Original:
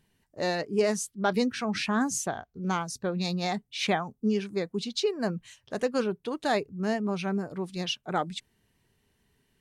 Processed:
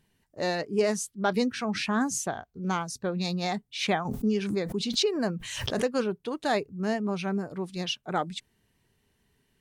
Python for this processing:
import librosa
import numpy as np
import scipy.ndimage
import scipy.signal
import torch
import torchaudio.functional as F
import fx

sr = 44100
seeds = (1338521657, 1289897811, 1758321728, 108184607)

y = fx.pre_swell(x, sr, db_per_s=41.0, at=(4.05, 5.85))